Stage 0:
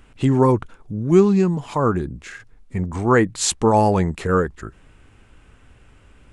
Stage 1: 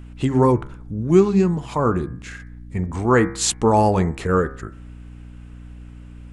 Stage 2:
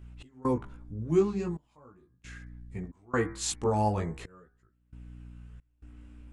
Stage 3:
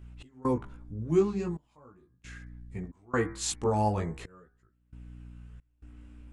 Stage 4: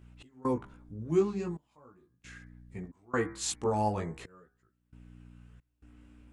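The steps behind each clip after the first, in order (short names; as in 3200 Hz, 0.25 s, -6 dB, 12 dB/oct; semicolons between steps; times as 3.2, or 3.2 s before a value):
de-hum 67.23 Hz, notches 35; hum 60 Hz, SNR 18 dB
chorus voices 2, 0.41 Hz, delay 18 ms, depth 2.1 ms; step gate "x.xxxxx...xx" 67 bpm -24 dB; gain -8.5 dB
nothing audible
low shelf 71 Hz -11.5 dB; gain -1.5 dB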